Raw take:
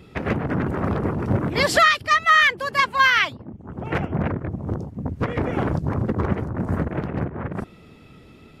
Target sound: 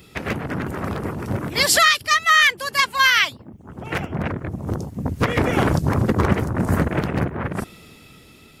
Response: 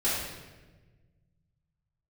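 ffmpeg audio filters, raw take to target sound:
-af "crystalizer=i=5:c=0,dynaudnorm=f=230:g=11:m=3.76,volume=0.708"

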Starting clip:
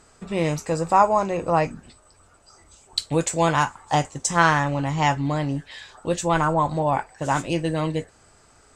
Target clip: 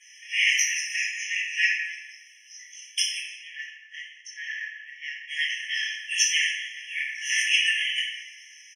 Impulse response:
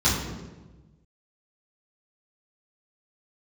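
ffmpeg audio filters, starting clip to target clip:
-filter_complex "[0:a]asettb=1/sr,asplit=3[s0][s1][s2];[s0]atrim=end=3.184[s3];[s1]atrim=start=3.18:end=5.28,asetpts=PTS-STARTPTS,afade=t=in:d=0.004:c=qsin,afade=t=out:st=2.096:d=0.004:c=qsin,bandpass=f=490:t=q:w=2.4:csg=0[s4];[s2]atrim=start=5.276[s5];[s3][s4]acrossfade=d=0.004:c1=hsin:c2=qsin[s6];[s6][s5]acrossfade=d=0.004:c1=qsin:c2=hsin,asplit=5[s7][s8][s9][s10][s11];[s8]adelay=88,afreqshift=-71,volume=0.178[s12];[s9]adelay=176,afreqshift=-142,volume=0.0822[s13];[s10]adelay=264,afreqshift=-213,volume=0.0376[s14];[s11]adelay=352,afreqshift=-284,volume=0.0174[s15];[s7][s12][s13][s14][s15]amix=inputs=5:normalize=0[s16];[1:a]atrim=start_sample=2205,asetrate=36603,aresample=44100[s17];[s16][s17]afir=irnorm=-1:irlink=0,afftfilt=real='re*eq(mod(floor(b*sr/1024/1700),2),1)':imag='im*eq(mod(floor(b*sr/1024/1700),2),1)':win_size=1024:overlap=0.75"

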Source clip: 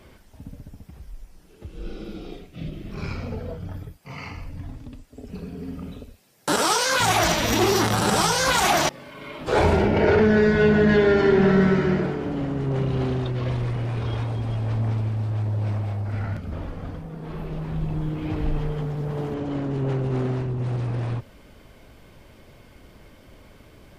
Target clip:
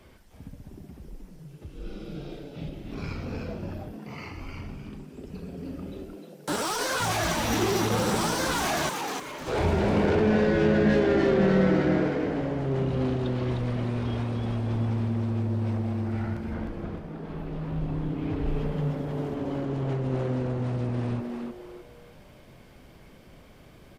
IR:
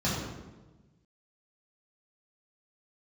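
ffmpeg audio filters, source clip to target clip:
-filter_complex "[0:a]asettb=1/sr,asplit=3[s0][s1][s2];[s0]atrim=end=16.544[s3];[s1]atrim=start=16.54:end=18.46,asetpts=PTS-STARTPTS,afade=t=in:d=0.004:c=qsin,afade=t=out:st=1.916:d=0.004:c=qsin,highshelf=f=5800:g=-6.5[s4];[s2]atrim=start=18.456[s5];[s3][s4]acrossfade=d=0.004:c1=hsin:c2=qsin[s6];[s6][s5]acrossfade=d=0.004:c1=qsin:c2=hsin,acrossover=split=330[s7][s8];[s8]asoftclip=type=tanh:threshold=0.0794[s9];[s7][s9]amix=inputs=2:normalize=0,asplit=5[s10][s11][s12][s13][s14];[s11]adelay=306,afreqshift=120,volume=0.596[s15];[s12]adelay=612,afreqshift=240,volume=0.197[s16];[s13]adelay=918,afreqshift=360,volume=0.0646[s17];[s14]adelay=1224,afreqshift=480,volume=0.0214[s18];[s10][s15][s16][s17][s18]amix=inputs=5:normalize=0,volume=0.631"

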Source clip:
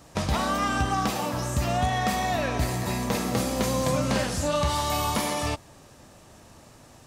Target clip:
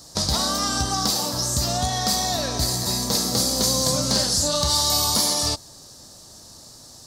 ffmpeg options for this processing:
-af "highshelf=f=3400:t=q:w=3:g=10,asoftclip=type=hard:threshold=0.282"

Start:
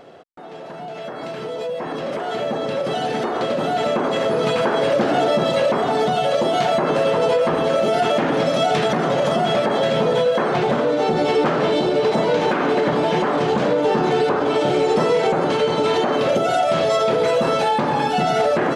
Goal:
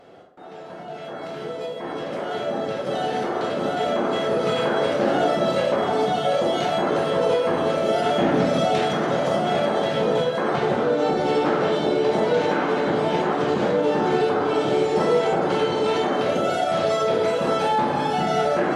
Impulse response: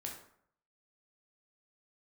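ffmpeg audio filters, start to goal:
-filter_complex "[0:a]asettb=1/sr,asplit=3[s0][s1][s2];[s0]atrim=end=8.134[s3];[s1]atrim=start=8.13:end=8.6,asetpts=PTS-STARTPTS,afade=t=in:d=0.004:c=qsin,afade=t=out:st=0.466:d=0.004:c=qsin,lowshelf=f=230:g=8.5[s4];[s2]atrim=start=8.596[s5];[s3][s4]acrossfade=d=0.004:c1=hsin:c2=qsin[s6];[s6][s5]acrossfade=d=0.004:c1=qsin:c2=hsin[s7];[1:a]atrim=start_sample=2205,asetrate=39249,aresample=44100[s8];[s7][s8]afir=irnorm=-1:irlink=0,volume=0.794"

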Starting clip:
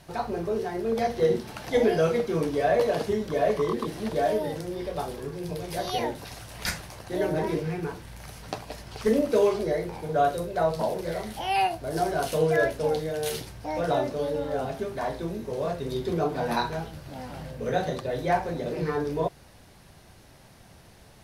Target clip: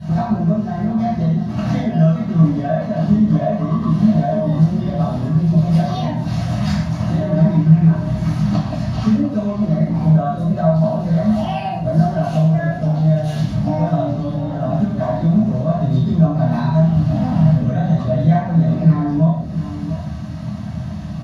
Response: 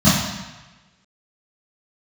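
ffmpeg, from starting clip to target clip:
-filter_complex "[0:a]equalizer=f=10000:w=7.1:g=4.5,acompressor=threshold=0.0112:ratio=5,highshelf=f=5800:g=-10.5,asplit=2[s0][s1];[s1]adelay=699.7,volume=0.316,highshelf=f=4000:g=-15.7[s2];[s0][s2]amix=inputs=2:normalize=0[s3];[1:a]atrim=start_sample=2205,afade=t=out:st=0.22:d=0.01,atrim=end_sample=10143[s4];[s3][s4]afir=irnorm=-1:irlink=0,volume=0.422"

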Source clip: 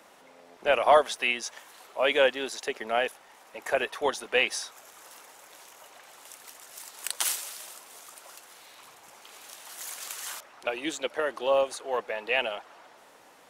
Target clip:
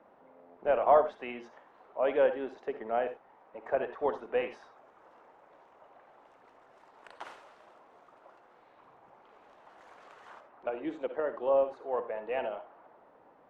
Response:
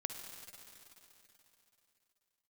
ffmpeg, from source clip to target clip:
-filter_complex "[0:a]lowpass=1000[s0];[1:a]atrim=start_sample=2205,atrim=end_sample=4410[s1];[s0][s1]afir=irnorm=-1:irlink=0"

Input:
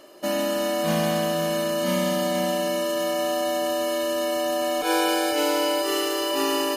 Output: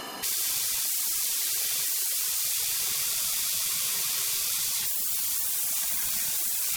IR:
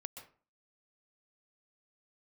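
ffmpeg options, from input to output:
-af "aeval=exprs='0.266*sin(PI/2*3.98*val(0)/0.266)':c=same,afftfilt=real='re*lt(hypot(re,im),0.0794)':imag='im*lt(hypot(re,im),0.0794)':win_size=1024:overlap=0.75"

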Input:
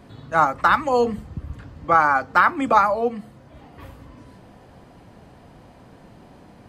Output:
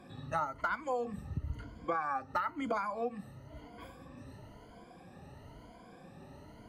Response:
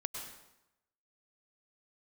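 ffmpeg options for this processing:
-af "afftfilt=real='re*pow(10,16/40*sin(2*PI*(1.8*log(max(b,1)*sr/1024/100)/log(2)-(1)*(pts-256)/sr)))':imag='im*pow(10,16/40*sin(2*PI*(1.8*log(max(b,1)*sr/1024/100)/log(2)-(1)*(pts-256)/sr)))':win_size=1024:overlap=0.75,acompressor=threshold=0.0708:ratio=6,volume=0.376"

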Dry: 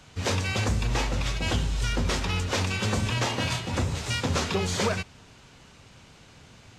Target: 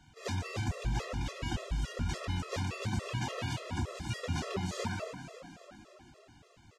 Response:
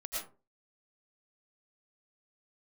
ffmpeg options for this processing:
-filter_complex "[0:a]asplit=8[s0][s1][s2][s3][s4][s5][s6][s7];[s1]adelay=272,afreqshift=38,volume=0.266[s8];[s2]adelay=544,afreqshift=76,volume=0.157[s9];[s3]adelay=816,afreqshift=114,volume=0.0923[s10];[s4]adelay=1088,afreqshift=152,volume=0.055[s11];[s5]adelay=1360,afreqshift=190,volume=0.0324[s12];[s6]adelay=1632,afreqshift=228,volume=0.0191[s13];[s7]adelay=1904,afreqshift=266,volume=0.0112[s14];[s0][s8][s9][s10][s11][s12][s13][s14]amix=inputs=8:normalize=0,asplit=2[s15][s16];[1:a]atrim=start_sample=2205,lowpass=2000[s17];[s16][s17]afir=irnorm=-1:irlink=0,volume=0.631[s18];[s15][s18]amix=inputs=2:normalize=0,afftfilt=real='re*gt(sin(2*PI*3.5*pts/sr)*(1-2*mod(floor(b*sr/1024/350),2)),0)':imag='im*gt(sin(2*PI*3.5*pts/sr)*(1-2*mod(floor(b*sr/1024/350),2)),0)':win_size=1024:overlap=0.75,volume=0.355"

